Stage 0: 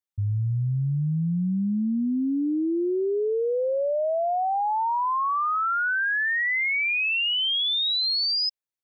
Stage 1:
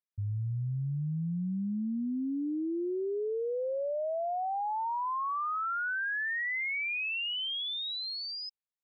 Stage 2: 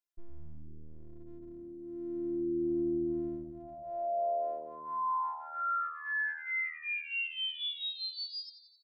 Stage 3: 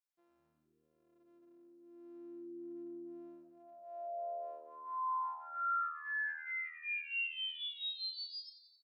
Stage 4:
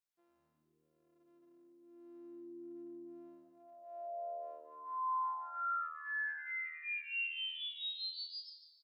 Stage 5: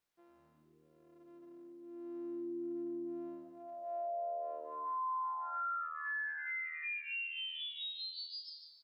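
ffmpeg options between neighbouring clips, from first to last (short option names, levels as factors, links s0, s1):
-af "lowpass=3600,volume=0.398"
-filter_complex "[0:a]bandreject=f=2300:w=14,afftfilt=real='hypot(re,im)*cos(PI*b)':imag='0':win_size=512:overlap=0.75,asplit=8[s0][s1][s2][s3][s4][s5][s6][s7];[s1]adelay=88,afreqshift=-78,volume=0.211[s8];[s2]adelay=176,afreqshift=-156,volume=0.129[s9];[s3]adelay=264,afreqshift=-234,volume=0.0785[s10];[s4]adelay=352,afreqshift=-312,volume=0.0479[s11];[s5]adelay=440,afreqshift=-390,volume=0.0292[s12];[s6]adelay=528,afreqshift=-468,volume=0.0178[s13];[s7]adelay=616,afreqshift=-546,volume=0.0108[s14];[s0][s8][s9][s10][s11][s12][s13][s14]amix=inputs=8:normalize=0,volume=1.19"
-filter_complex "[0:a]highpass=660,asplit=2[s0][s1];[s1]adelay=37,volume=0.282[s2];[s0][s2]amix=inputs=2:normalize=0,volume=0.631"
-af "aecho=1:1:147|294|441:0.282|0.0846|0.0254,volume=0.891"
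-af "acompressor=threshold=0.00398:ratio=4,highshelf=f=4000:g=-9,volume=3.35"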